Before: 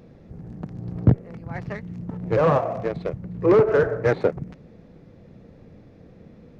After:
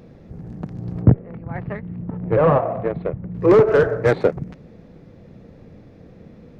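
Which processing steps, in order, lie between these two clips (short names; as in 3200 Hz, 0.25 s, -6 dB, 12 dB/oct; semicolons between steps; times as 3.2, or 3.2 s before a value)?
tracing distortion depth 0.028 ms; 1.02–3.35 Gaussian blur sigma 3.1 samples; gain +3.5 dB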